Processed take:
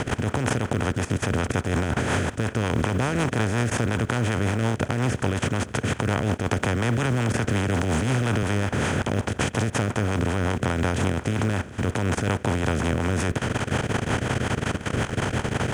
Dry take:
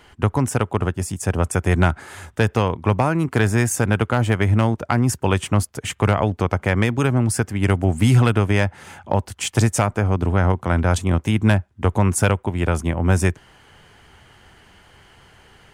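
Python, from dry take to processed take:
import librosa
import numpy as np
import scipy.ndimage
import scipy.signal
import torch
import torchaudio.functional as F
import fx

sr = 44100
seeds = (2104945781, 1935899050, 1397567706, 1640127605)

y = fx.bin_compress(x, sr, power=0.2)
y = scipy.signal.sosfilt(scipy.signal.butter(2, 6000.0, 'lowpass', fs=sr, output='sos'), y)
y = fx.level_steps(y, sr, step_db=16)
y = fx.rotary(y, sr, hz=5.5)
y = fx.quant_companded(y, sr, bits=8)
y = fx.band_squash(y, sr, depth_pct=100, at=(6.51, 8.43))
y = y * librosa.db_to_amplitude(-5.5)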